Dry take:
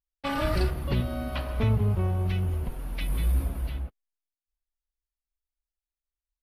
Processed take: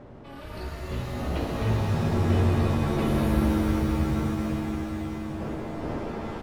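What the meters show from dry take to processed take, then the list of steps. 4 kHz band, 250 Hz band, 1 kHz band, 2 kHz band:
+0.5 dB, +9.0 dB, +4.5 dB, +2.0 dB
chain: fade-in on the opening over 1.24 s; wind noise 410 Hz -34 dBFS; on a send: delay 1010 ms -13 dB; on the sum: pitch-shifted reverb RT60 4 s, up +7 st, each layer -2 dB, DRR -2.5 dB; trim -6.5 dB

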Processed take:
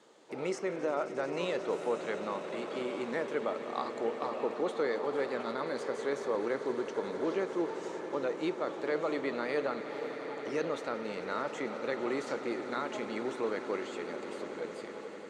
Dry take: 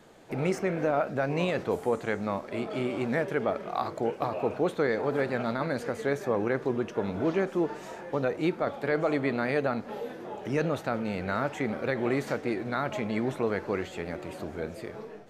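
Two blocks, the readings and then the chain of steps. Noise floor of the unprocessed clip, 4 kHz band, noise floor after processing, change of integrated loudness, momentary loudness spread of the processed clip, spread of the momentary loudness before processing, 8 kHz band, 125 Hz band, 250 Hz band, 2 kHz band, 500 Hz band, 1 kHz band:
-44 dBFS, -2.0 dB, -44 dBFS, -5.0 dB, 6 LU, 9 LU, no reading, -16.0 dB, -7.0 dB, -5.5 dB, -4.0 dB, -4.5 dB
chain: cabinet simulation 360–8900 Hz, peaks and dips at 700 Hz -8 dB, 1.6 kHz -6 dB, 2.4 kHz -5 dB; echo with a slow build-up 89 ms, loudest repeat 8, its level -17 dB; trim -2 dB

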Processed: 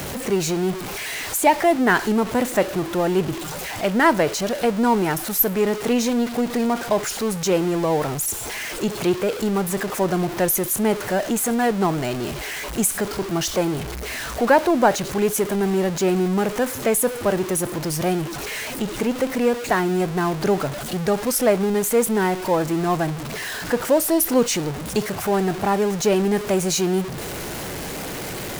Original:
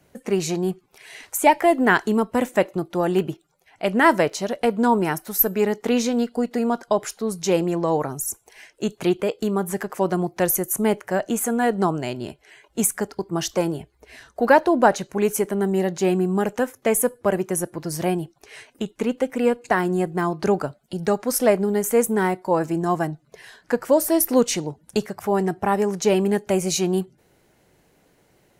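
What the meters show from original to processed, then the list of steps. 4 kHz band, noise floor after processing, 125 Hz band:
+4.5 dB, -30 dBFS, +2.0 dB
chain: jump at every zero crossing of -23 dBFS; trim -1.5 dB

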